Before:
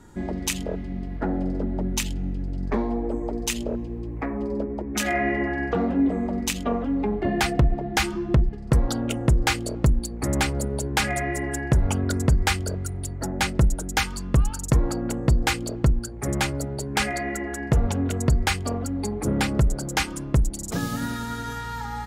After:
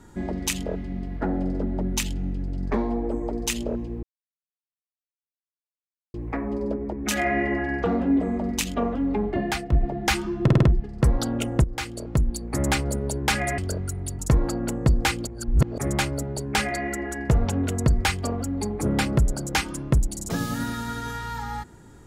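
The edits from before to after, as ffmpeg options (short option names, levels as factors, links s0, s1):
-filter_complex "[0:a]asplit=12[s0][s1][s2][s3][s4][s5][s6][s7][s8][s9][s10][s11];[s0]atrim=end=4.03,asetpts=PTS-STARTPTS,afade=t=out:st=4.026:d=0.004:c=hsin,apad=pad_dur=2.11[s12];[s1]atrim=start=4.03:end=7.61,asetpts=PTS-STARTPTS,afade=t=in:d=0.004:c=hsin,afade=t=out:st=3.15:d=0.43:silence=0.298538[s13];[s2]atrim=start=7.61:end=8.372,asetpts=PTS-STARTPTS,afade=t=in:d=0.004:c=hsin:silence=0.298538[s14];[s3]atrim=start=8.318:end=8.372[s15];[s4]atrim=start=8.318:end=8.372[s16];[s5]atrim=start=8.318:end=8.372[s17];[s6]atrim=start=8.318:end=9.33,asetpts=PTS-STARTPTS,afade=t=out:st=1.008:d=0.004:c=hsin:silence=0.223872[s18];[s7]atrim=start=9.33:end=11.272,asetpts=PTS-STARTPTS,afade=t=in:d=0.8:silence=0.223872[s19];[s8]atrim=start=12.548:end=13.162[s20];[s9]atrim=start=14.608:end=15.692[s21];[s10]atrim=start=15.688:end=16.202,asetpts=PTS-STARTPTS,areverse[s22];[s11]atrim=start=16.198[s23];[s12][s13][s14]concat=n=3:v=0:a=1[s24];[s24][s15]acrossfade=d=0.004:c1=hsin:c2=hsin[s25];[s25][s16]acrossfade=d=0.004:c1=hsin:c2=hsin[s26];[s26][s17]acrossfade=d=0.004:c1=hsin:c2=hsin[s27];[s18][s19]concat=n=2:v=0:a=1[s28];[s27][s28]acrossfade=d=0.004:c1=hsin:c2=hsin[s29];[s29][s20]acrossfade=d=0.004:c1=hsin:c2=hsin[s30];[s30][s21]acrossfade=d=0.004:c1=hsin:c2=hsin[s31];[s31][s22]acrossfade=d=0.004:c1=hsin:c2=hsin[s32];[s32][s23]acrossfade=d=0.004:c1=hsin:c2=hsin"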